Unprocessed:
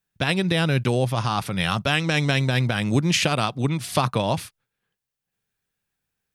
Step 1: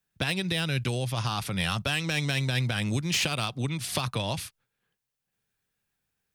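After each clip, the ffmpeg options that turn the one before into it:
ffmpeg -i in.wav -filter_complex "[0:a]acrossover=split=100|2000[link_01][link_02][link_03];[link_02]acompressor=threshold=-30dB:ratio=6[link_04];[link_03]asoftclip=type=tanh:threshold=-22dB[link_05];[link_01][link_04][link_05]amix=inputs=3:normalize=0" out.wav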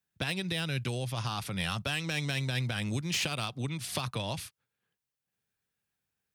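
ffmpeg -i in.wav -af "highpass=49,volume=-4.5dB" out.wav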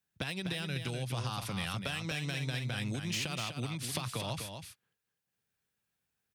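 ffmpeg -i in.wav -af "acompressor=threshold=-33dB:ratio=6,aecho=1:1:249:0.447" out.wav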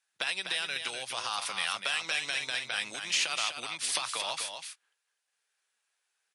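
ffmpeg -i in.wav -af "highpass=850,volume=8dB" -ar 24000 -c:a libmp3lame -b:a 48k out.mp3

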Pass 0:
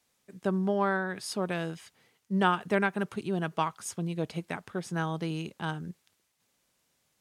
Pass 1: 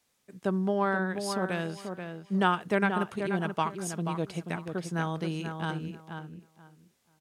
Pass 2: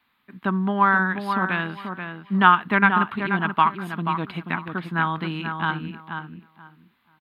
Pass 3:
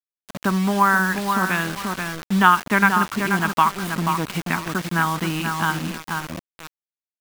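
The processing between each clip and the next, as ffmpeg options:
ffmpeg -i in.wav -filter_complex "[0:a]asplit=2[link_01][link_02];[link_02]adelay=483,lowpass=frequency=2400:poles=1,volume=-6.5dB,asplit=2[link_03][link_04];[link_04]adelay=483,lowpass=frequency=2400:poles=1,volume=0.2,asplit=2[link_05][link_06];[link_06]adelay=483,lowpass=frequency=2400:poles=1,volume=0.2[link_07];[link_01][link_03][link_05][link_07]amix=inputs=4:normalize=0" out.wav
ffmpeg -i in.wav -af "firequalizer=gain_entry='entry(160,0);entry(240,7);entry(370,-3);entry(520,-8);entry(1000,11);entry(4000,2);entry(5800,-26);entry(9200,-19);entry(13000,-3)':delay=0.05:min_phase=1,volume=3dB" out.wav
ffmpeg -i in.wav -filter_complex "[0:a]asplit=2[link_01][link_02];[link_02]acompressor=threshold=-29dB:ratio=6,volume=2.5dB[link_03];[link_01][link_03]amix=inputs=2:normalize=0,acrusher=bits=4:mix=0:aa=0.000001,volume=-1dB" out.wav

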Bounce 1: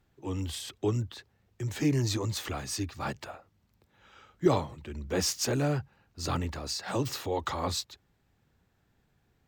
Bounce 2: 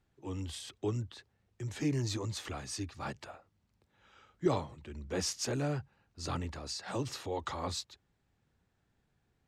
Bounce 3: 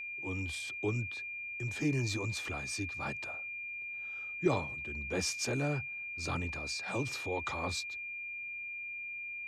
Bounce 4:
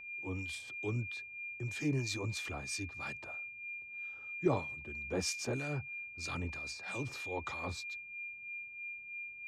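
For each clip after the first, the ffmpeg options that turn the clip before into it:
ffmpeg -i in.wav -af "lowpass=frequency=11000:width=0.5412,lowpass=frequency=11000:width=1.3066,volume=-5.5dB" out.wav
ffmpeg -i in.wav -af "aeval=exprs='val(0)+0.0112*sin(2*PI*2400*n/s)':channel_layout=same" out.wav
ffmpeg -i in.wav -filter_complex "[0:a]acrossover=split=1400[link_01][link_02];[link_01]aeval=exprs='val(0)*(1-0.7/2+0.7/2*cos(2*PI*3.1*n/s))':channel_layout=same[link_03];[link_02]aeval=exprs='val(0)*(1-0.7/2-0.7/2*cos(2*PI*3.1*n/s))':channel_layout=same[link_04];[link_03][link_04]amix=inputs=2:normalize=0" out.wav

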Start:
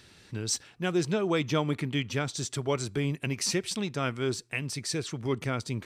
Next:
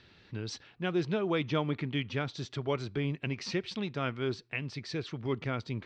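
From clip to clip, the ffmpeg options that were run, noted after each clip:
ffmpeg -i in.wav -af "lowpass=frequency=4300:width=0.5412,lowpass=frequency=4300:width=1.3066,volume=-3dB" out.wav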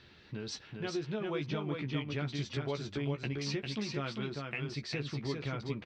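ffmpeg -i in.wav -filter_complex "[0:a]acompressor=threshold=-35dB:ratio=6,asplit=2[link_01][link_02];[link_02]adelay=14,volume=-6dB[link_03];[link_01][link_03]amix=inputs=2:normalize=0,aecho=1:1:399:0.631" out.wav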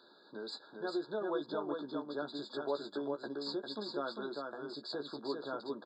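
ffmpeg -i in.wav -af "highpass=frequency=270:width=0.5412,highpass=frequency=270:width=1.3066,equalizer=frequency=600:width_type=q:width=4:gain=5,equalizer=frequency=940:width_type=q:width=4:gain=4,equalizer=frequency=3100:width_type=q:width=4:gain=-4,lowpass=frequency=7300:width=0.5412,lowpass=frequency=7300:width=1.3066,afftfilt=real='re*eq(mod(floor(b*sr/1024/1700),2),0)':imag='im*eq(mod(floor(b*sr/1024/1700),2),0)':win_size=1024:overlap=0.75" out.wav

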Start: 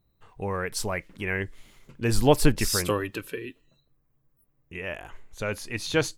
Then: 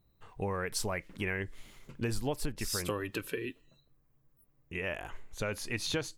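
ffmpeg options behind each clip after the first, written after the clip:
ffmpeg -i in.wav -af "acompressor=threshold=-30dB:ratio=8" out.wav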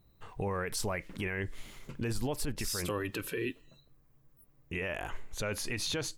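ffmpeg -i in.wav -af "alimiter=level_in=6dB:limit=-24dB:level=0:latency=1:release=33,volume=-6dB,volume=5dB" out.wav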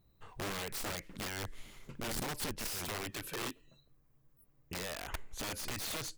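ffmpeg -i in.wav -af "aeval=exprs='(mod(28.2*val(0)+1,2)-1)/28.2':channel_layout=same,volume=-4dB" out.wav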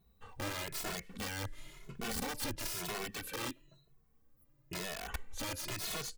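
ffmpeg -i in.wav -filter_complex "[0:a]asplit=2[link_01][link_02];[link_02]adelay=2.3,afreqshift=1[link_03];[link_01][link_03]amix=inputs=2:normalize=1,volume=3dB" out.wav

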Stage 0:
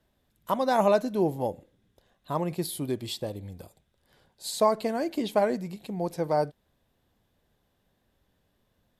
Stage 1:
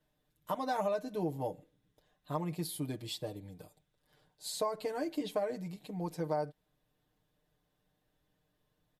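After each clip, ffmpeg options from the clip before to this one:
ffmpeg -i in.wav -af "aecho=1:1:6.6:0.89,acompressor=threshold=-21dB:ratio=6,volume=-8.5dB" out.wav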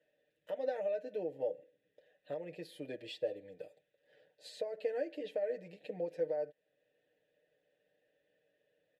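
ffmpeg -i in.wav -filter_complex "[0:a]alimiter=level_in=7.5dB:limit=-24dB:level=0:latency=1:release=483,volume=-7.5dB,asplit=3[link_01][link_02][link_03];[link_01]bandpass=frequency=530:width_type=q:width=8,volume=0dB[link_04];[link_02]bandpass=frequency=1840:width_type=q:width=8,volume=-6dB[link_05];[link_03]bandpass=frequency=2480:width_type=q:width=8,volume=-9dB[link_06];[link_04][link_05][link_06]amix=inputs=3:normalize=0,volume=14.5dB" out.wav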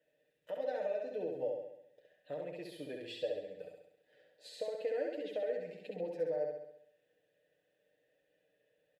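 ffmpeg -i in.wav -af "aecho=1:1:67|134|201|268|335|402|469|536:0.668|0.368|0.202|0.111|0.0612|0.0336|0.0185|0.0102,volume=-1.5dB" out.wav

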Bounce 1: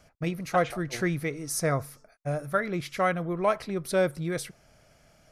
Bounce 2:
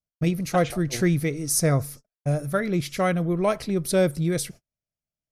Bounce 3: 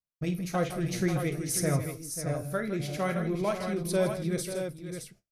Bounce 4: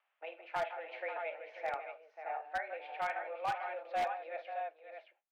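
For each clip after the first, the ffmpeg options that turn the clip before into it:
ffmpeg -i in.wav -af "agate=range=-42dB:threshold=-48dB:ratio=16:detection=peak,equalizer=frequency=1200:width=0.48:gain=-10.5,volume=9dB" out.wav
ffmpeg -i in.wav -filter_complex "[0:a]flanger=delay=6.9:depth=8.5:regen=-63:speed=0.51:shape=triangular,asplit=2[link_01][link_02];[link_02]aecho=0:1:50|161|540|617:0.266|0.237|0.282|0.447[link_03];[link_01][link_03]amix=inputs=2:normalize=0,volume=-3dB" out.wav
ffmpeg -i in.wav -af "acompressor=mode=upward:threshold=-48dB:ratio=2.5,highpass=frequency=430:width_type=q:width=0.5412,highpass=frequency=430:width_type=q:width=1.307,lowpass=frequency=2700:width_type=q:width=0.5176,lowpass=frequency=2700:width_type=q:width=0.7071,lowpass=frequency=2700:width_type=q:width=1.932,afreqshift=160,aeval=exprs='0.0668*(abs(mod(val(0)/0.0668+3,4)-2)-1)':channel_layout=same,volume=-4dB" out.wav

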